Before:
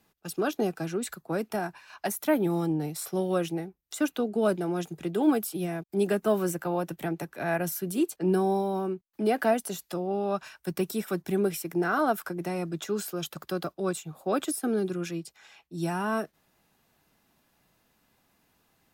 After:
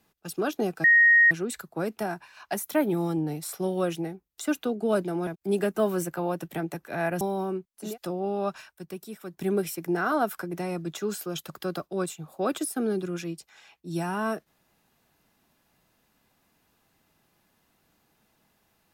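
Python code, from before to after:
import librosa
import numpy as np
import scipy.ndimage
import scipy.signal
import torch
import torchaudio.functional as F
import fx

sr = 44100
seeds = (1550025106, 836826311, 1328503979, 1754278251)

y = fx.edit(x, sr, fx.insert_tone(at_s=0.84, length_s=0.47, hz=1870.0, db=-14.0),
    fx.cut(start_s=4.8, length_s=0.95),
    fx.cut(start_s=7.69, length_s=0.88),
    fx.cut(start_s=9.22, length_s=0.51, crossfade_s=0.24),
    fx.fade_down_up(start_s=10.45, length_s=0.93, db=-9.5, fade_s=0.19, curve='qsin'), tone=tone)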